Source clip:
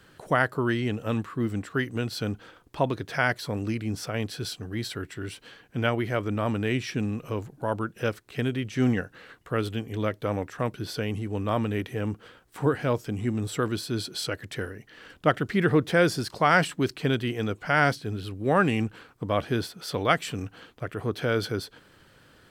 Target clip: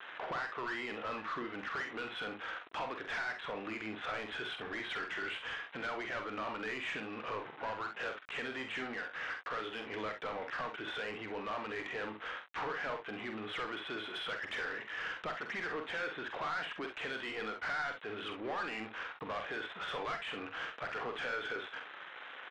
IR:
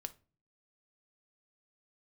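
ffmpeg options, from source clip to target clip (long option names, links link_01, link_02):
-filter_complex "[0:a]acompressor=threshold=-33dB:ratio=12,aresample=8000,aeval=exprs='val(0)*gte(abs(val(0)),0.00211)':channel_layout=same,aresample=44100,bandpass=frequency=1900:width_type=q:width=0.69:csg=0,asplit=2[link_01][link_02];[link_02]highpass=frequency=720:poles=1,volume=23dB,asoftclip=type=tanh:threshold=-25dB[link_03];[link_01][link_03]amix=inputs=2:normalize=0,lowpass=frequency=1300:poles=1,volume=-6dB,asoftclip=type=tanh:threshold=-34.5dB,aecho=1:1:46|65:0.447|0.282,volume=1dB"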